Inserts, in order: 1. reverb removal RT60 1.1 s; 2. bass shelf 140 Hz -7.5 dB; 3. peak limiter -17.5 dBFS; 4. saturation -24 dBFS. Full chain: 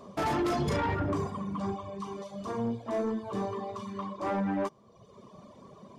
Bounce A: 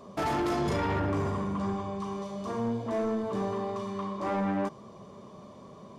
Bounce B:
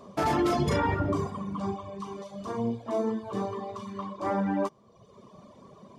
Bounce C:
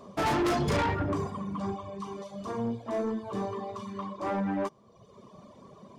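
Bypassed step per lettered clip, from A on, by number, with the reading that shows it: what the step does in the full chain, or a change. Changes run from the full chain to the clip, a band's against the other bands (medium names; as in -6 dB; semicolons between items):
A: 1, momentary loudness spread change +9 LU; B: 4, distortion -14 dB; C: 3, 4 kHz band +2.5 dB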